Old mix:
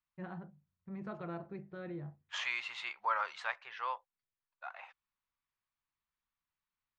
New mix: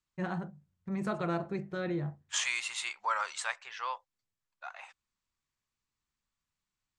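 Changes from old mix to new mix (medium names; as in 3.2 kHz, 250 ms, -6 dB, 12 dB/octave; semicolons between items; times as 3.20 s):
first voice +9.0 dB; master: remove distance through air 260 m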